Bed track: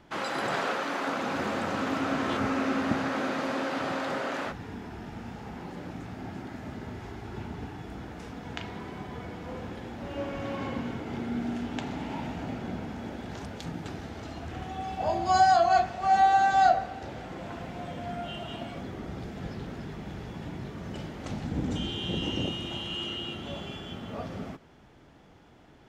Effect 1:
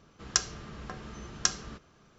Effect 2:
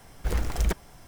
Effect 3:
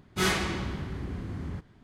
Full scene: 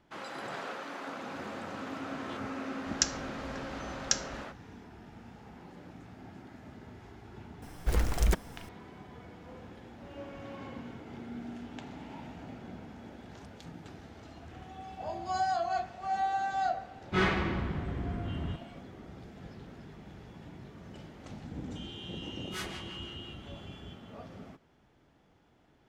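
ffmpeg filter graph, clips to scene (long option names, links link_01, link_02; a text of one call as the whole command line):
ffmpeg -i bed.wav -i cue0.wav -i cue1.wav -i cue2.wav -filter_complex "[3:a]asplit=2[link_01][link_02];[0:a]volume=-10dB[link_03];[1:a]asuperstop=centerf=890:order=4:qfactor=0.94[link_04];[link_01]lowpass=2500[link_05];[link_02]acrossover=split=820[link_06][link_07];[link_06]aeval=exprs='val(0)*(1-0.7/2+0.7/2*cos(2*PI*5.9*n/s))':channel_layout=same[link_08];[link_07]aeval=exprs='val(0)*(1-0.7/2-0.7/2*cos(2*PI*5.9*n/s))':channel_layout=same[link_09];[link_08][link_09]amix=inputs=2:normalize=0[link_10];[link_04]atrim=end=2.18,asetpts=PTS-STARTPTS,volume=-1.5dB,afade=type=in:duration=0.004:curve=hsin,afade=type=out:start_time=2.176:duration=0.004:curve=hsin,adelay=2660[link_11];[2:a]atrim=end=1.07,asetpts=PTS-STARTPTS,volume=-1dB,afade=type=in:duration=0.004:curve=hsin,afade=type=out:start_time=1.066:duration=0.004:curve=hsin,adelay=336042S[link_12];[link_05]atrim=end=1.83,asetpts=PTS-STARTPTS,afade=type=in:duration=0.004:curve=hsin,afade=type=out:start_time=1.826:duration=0.004:curve=hsin,adelay=16960[link_13];[link_10]atrim=end=1.83,asetpts=PTS-STARTPTS,volume=-10.5dB,afade=type=in:duration=0.004:curve=hsin,afade=type=out:start_time=1.826:duration=0.004:curve=hsin,adelay=22340[link_14];[link_03][link_11][link_12][link_13][link_14]amix=inputs=5:normalize=0" out.wav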